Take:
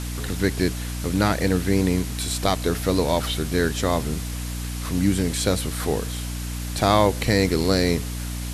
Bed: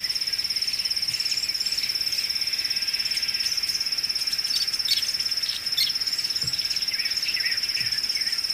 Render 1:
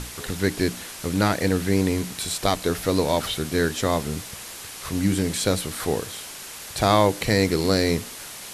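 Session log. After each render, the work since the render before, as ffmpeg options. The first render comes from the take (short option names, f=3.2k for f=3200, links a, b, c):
-af "bandreject=f=60:t=h:w=6,bandreject=f=120:t=h:w=6,bandreject=f=180:t=h:w=6,bandreject=f=240:t=h:w=6,bandreject=f=300:t=h:w=6"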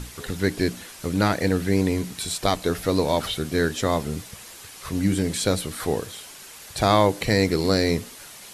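-af "afftdn=nr=6:nf=-38"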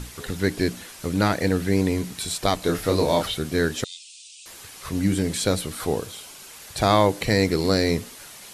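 -filter_complex "[0:a]asettb=1/sr,asplit=3[a][b][c];[a]atrim=end=2.604[d];[b]atrim=start=2.6:end=3.23,asetpts=PTS-STARTPTS,afade=t=in:d=0.004:c=qsin,afade=t=out:st=0.626:d=0.004:c=qsin,asplit=2[e][f];[f]adelay=30,volume=-4dB[g];[e][g]amix=inputs=2:normalize=0,atrim=end_sample=27783[h];[c]atrim=start=3.226[i];[d][h]acrossfade=d=0.004:c1=hsin:c2=qsin[j];[j][i]acrossfade=d=0.004:c1=qsin:c2=hsin,asettb=1/sr,asplit=3[k][l][m];[k]atrim=end=3.844[n];[l]atrim=start=3.84:end=4.46,asetpts=PTS-STARTPTS,afade=t=in:d=0.004:c=qsin,afade=t=out:st=0.616:d=0.004:c=qsin,asuperpass=centerf=5000:order=20:qfactor=0.74[o];[m]atrim=start=4.456[p];[n][o]acrossfade=d=0.004:c1=hsin:c2=qsin[q];[q][p]acrossfade=d=0.004:c1=qsin:c2=hsin,asettb=1/sr,asplit=3[r][s][t];[r]atrim=end=5.734[u];[s]atrim=start=5.73:end=6.5,asetpts=PTS-STARTPTS,afade=t=in:d=0.004:c=qsin,afade=t=out:st=0.766:d=0.004:c=qsin,equalizer=f=1.8k:t=o:w=0.2:g=-8[v];[t]atrim=start=6.496[w];[u][v]acrossfade=d=0.004:c1=hsin:c2=qsin[x];[x][w]acrossfade=d=0.004:c1=qsin:c2=hsin"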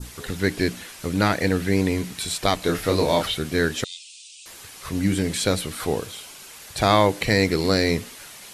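-af "adynamicequalizer=threshold=0.01:dfrequency=2300:dqfactor=0.92:tfrequency=2300:tqfactor=0.92:attack=5:release=100:ratio=0.375:range=2:mode=boostabove:tftype=bell"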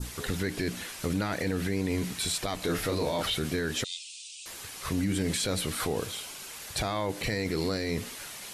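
-af "acompressor=threshold=-21dB:ratio=5,alimiter=limit=-20.5dB:level=0:latency=1:release=13"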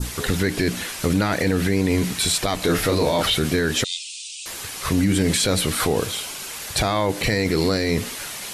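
-af "volume=9.5dB"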